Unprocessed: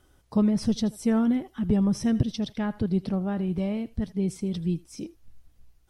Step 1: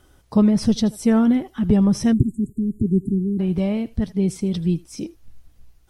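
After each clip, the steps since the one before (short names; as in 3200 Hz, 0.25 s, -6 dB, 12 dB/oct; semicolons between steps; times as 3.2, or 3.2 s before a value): spectral delete 2.13–3.4, 410–6700 Hz; gain +6.5 dB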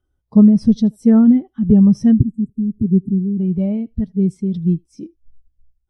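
spectral expander 1.5:1; gain +4.5 dB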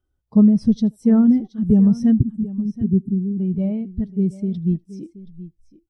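echo 0.726 s -16.5 dB; gain -3.5 dB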